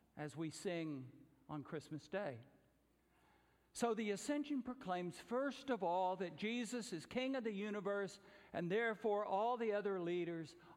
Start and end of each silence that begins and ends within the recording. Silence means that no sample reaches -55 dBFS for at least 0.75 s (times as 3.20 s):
2.42–3.75 s